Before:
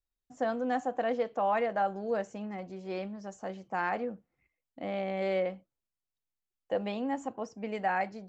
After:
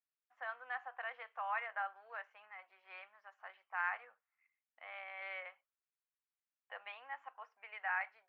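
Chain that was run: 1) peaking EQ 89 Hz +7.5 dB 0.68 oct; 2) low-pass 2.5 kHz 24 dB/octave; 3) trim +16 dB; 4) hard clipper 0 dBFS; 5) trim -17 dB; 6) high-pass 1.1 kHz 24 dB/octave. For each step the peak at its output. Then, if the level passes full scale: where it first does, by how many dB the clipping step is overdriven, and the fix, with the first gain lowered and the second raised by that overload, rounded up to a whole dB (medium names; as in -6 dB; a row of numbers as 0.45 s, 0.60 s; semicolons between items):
-18.5 dBFS, -18.5 dBFS, -2.5 dBFS, -2.5 dBFS, -19.5 dBFS, -24.5 dBFS; nothing clips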